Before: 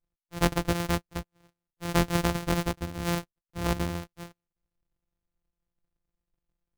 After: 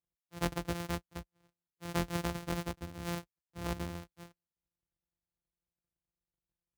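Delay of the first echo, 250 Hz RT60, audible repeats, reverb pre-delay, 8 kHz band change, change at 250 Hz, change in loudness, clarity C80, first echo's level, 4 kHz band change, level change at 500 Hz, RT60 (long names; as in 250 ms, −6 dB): no echo audible, no reverb audible, no echo audible, no reverb audible, −9.0 dB, −9.0 dB, −9.0 dB, no reverb audible, no echo audible, −9.0 dB, −9.0 dB, no reverb audible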